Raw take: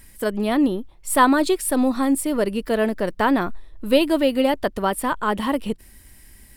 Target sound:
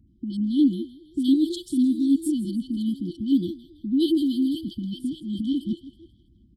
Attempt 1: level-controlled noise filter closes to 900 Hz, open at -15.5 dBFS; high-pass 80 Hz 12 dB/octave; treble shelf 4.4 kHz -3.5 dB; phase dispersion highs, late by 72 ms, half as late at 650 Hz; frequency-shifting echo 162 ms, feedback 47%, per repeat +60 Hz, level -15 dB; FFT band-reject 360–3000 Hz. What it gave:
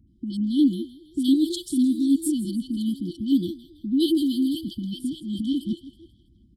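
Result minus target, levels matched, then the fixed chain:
8 kHz band +6.5 dB
level-controlled noise filter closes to 900 Hz, open at -15.5 dBFS; high-pass 80 Hz 12 dB/octave; treble shelf 4.4 kHz -11.5 dB; phase dispersion highs, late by 72 ms, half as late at 650 Hz; frequency-shifting echo 162 ms, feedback 47%, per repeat +60 Hz, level -15 dB; FFT band-reject 360–3000 Hz

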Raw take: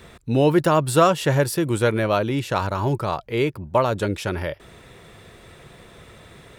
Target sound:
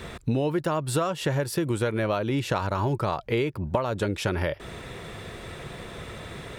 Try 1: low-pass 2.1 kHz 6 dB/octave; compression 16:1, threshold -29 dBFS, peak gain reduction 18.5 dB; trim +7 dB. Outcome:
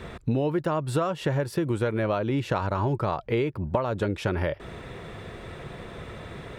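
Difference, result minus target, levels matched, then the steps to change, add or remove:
8 kHz band -8.0 dB
change: low-pass 8 kHz 6 dB/octave

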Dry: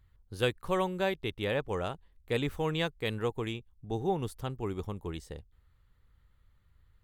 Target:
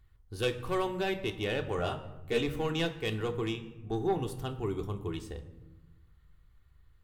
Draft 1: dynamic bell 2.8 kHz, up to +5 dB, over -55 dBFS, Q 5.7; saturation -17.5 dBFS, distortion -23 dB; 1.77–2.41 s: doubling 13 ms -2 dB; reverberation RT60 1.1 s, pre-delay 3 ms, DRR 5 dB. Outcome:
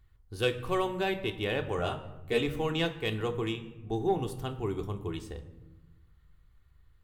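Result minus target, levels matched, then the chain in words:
saturation: distortion -9 dB
dynamic bell 2.8 kHz, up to +5 dB, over -55 dBFS, Q 5.7; saturation -24 dBFS, distortion -14 dB; 1.77–2.41 s: doubling 13 ms -2 dB; reverberation RT60 1.1 s, pre-delay 3 ms, DRR 5 dB

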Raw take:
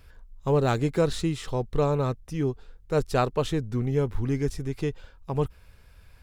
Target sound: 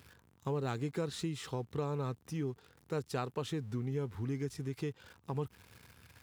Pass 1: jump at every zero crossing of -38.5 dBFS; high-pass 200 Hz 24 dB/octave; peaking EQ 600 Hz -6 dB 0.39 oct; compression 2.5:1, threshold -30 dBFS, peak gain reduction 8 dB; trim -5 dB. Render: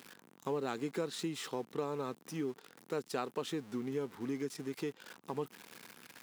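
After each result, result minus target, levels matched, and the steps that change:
125 Hz band -9.5 dB; jump at every zero crossing: distortion +8 dB
change: high-pass 90 Hz 24 dB/octave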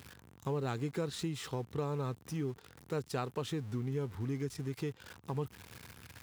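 jump at every zero crossing: distortion +8 dB
change: jump at every zero crossing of -47 dBFS

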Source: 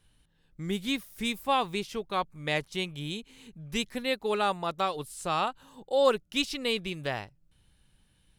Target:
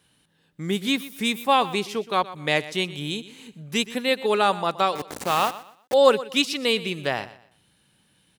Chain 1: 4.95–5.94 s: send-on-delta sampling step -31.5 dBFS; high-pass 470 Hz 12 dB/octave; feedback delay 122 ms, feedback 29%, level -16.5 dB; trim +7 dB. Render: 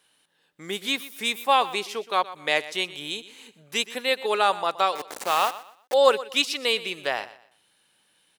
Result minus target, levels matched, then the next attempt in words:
125 Hz band -14.0 dB
4.95–5.94 s: send-on-delta sampling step -31.5 dBFS; high-pass 160 Hz 12 dB/octave; feedback delay 122 ms, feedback 29%, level -16.5 dB; trim +7 dB

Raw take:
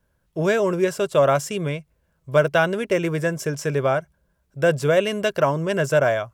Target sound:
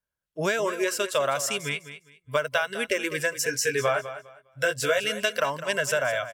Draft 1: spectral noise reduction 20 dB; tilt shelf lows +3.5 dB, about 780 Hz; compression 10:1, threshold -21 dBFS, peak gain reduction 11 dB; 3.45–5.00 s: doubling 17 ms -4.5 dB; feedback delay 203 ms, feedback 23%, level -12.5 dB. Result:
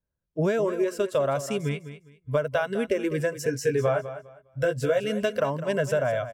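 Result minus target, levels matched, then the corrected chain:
1 kHz band -2.5 dB
spectral noise reduction 20 dB; tilt shelf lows -7 dB, about 780 Hz; compression 10:1, threshold -21 dBFS, peak gain reduction 10 dB; 3.45–5.00 s: doubling 17 ms -4.5 dB; feedback delay 203 ms, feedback 23%, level -12.5 dB

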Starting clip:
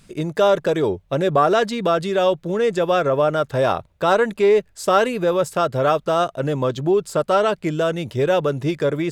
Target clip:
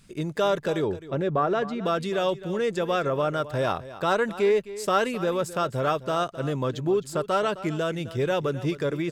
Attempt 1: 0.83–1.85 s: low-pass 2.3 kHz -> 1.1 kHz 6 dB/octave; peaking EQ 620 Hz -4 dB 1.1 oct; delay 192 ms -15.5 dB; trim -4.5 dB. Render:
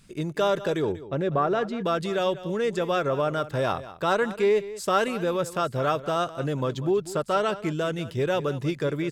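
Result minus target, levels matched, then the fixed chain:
echo 69 ms early
0.83–1.85 s: low-pass 2.3 kHz -> 1.1 kHz 6 dB/octave; peaking EQ 620 Hz -4 dB 1.1 oct; delay 261 ms -15.5 dB; trim -4.5 dB

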